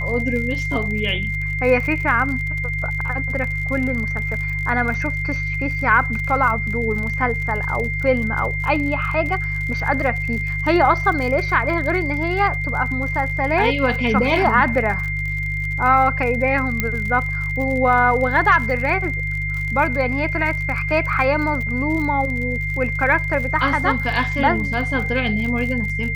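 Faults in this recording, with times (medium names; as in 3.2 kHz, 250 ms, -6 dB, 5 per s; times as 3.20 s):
crackle 50 per s -27 dBFS
hum 50 Hz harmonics 3 -26 dBFS
whine 2.1 kHz -24 dBFS
16.80 s: pop -5 dBFS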